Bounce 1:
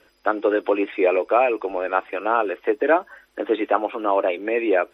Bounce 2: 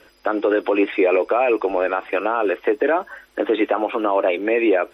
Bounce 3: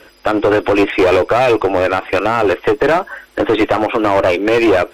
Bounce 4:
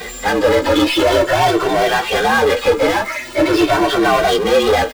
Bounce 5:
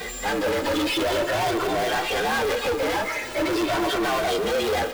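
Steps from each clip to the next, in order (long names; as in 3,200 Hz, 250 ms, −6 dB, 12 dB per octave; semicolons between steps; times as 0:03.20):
brickwall limiter −15.5 dBFS, peak gain reduction 11.5 dB; level +6.5 dB
asymmetric clip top −19.5 dBFS, bottom −12.5 dBFS; level +8 dB
partials spread apart or drawn together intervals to 113%; power curve on the samples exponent 0.5; barber-pole flanger 2.1 ms +0.45 Hz
one scale factor per block 5 bits; soft clipping −17.5 dBFS, distortion −9 dB; convolution reverb RT60 2.1 s, pre-delay 95 ms, DRR 12 dB; level −3.5 dB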